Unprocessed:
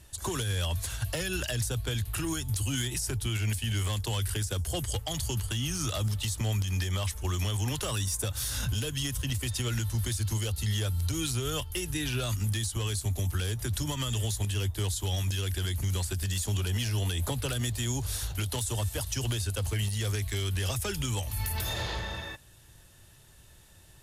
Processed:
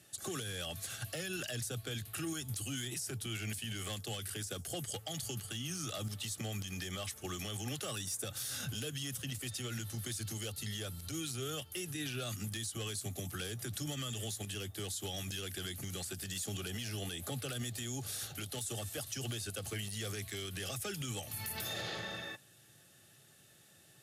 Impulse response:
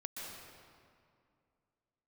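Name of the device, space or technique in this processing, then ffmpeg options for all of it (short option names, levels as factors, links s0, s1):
PA system with an anti-feedback notch: -af "highpass=f=130:w=0.5412,highpass=f=130:w=1.3066,asuperstop=centerf=970:order=8:qfactor=4.7,alimiter=level_in=1.33:limit=0.0631:level=0:latency=1:release=70,volume=0.75,volume=0.668"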